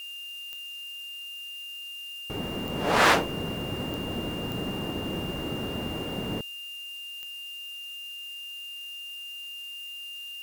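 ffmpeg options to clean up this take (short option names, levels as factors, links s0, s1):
-af "adeclick=t=4,bandreject=f=2800:w=30,afftdn=nr=30:nf=-40"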